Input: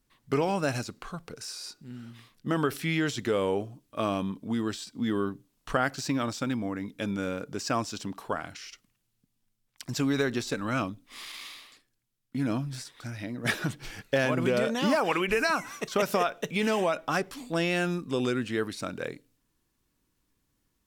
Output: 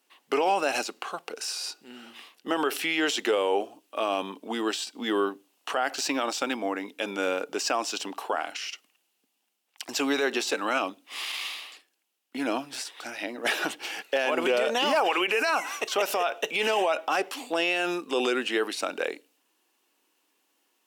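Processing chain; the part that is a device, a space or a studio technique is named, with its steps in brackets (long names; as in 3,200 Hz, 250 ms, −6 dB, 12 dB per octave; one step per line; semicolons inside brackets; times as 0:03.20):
laptop speaker (high-pass filter 330 Hz 24 dB per octave; parametric band 790 Hz +7 dB 0.41 octaves; parametric band 2,800 Hz +8.5 dB 0.35 octaves; brickwall limiter −21.5 dBFS, peak gain reduction 11.5 dB)
level +6 dB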